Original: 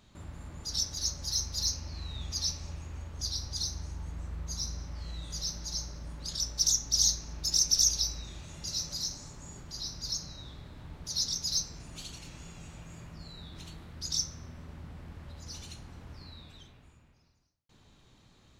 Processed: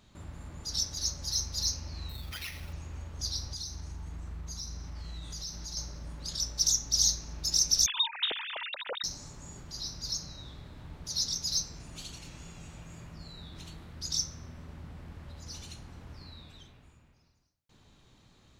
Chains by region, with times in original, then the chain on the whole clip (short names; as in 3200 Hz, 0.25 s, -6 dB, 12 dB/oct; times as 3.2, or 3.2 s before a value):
2.09–2.73 compressor 5:1, threshold -36 dBFS + sample-rate reducer 8000 Hz
3.53–5.77 notch 540 Hz, Q 7.3 + compressor 2.5:1, threshold -37 dBFS
7.86–9.04 sine-wave speech + bell 1100 Hz -7 dB 0.2 oct
whole clip: dry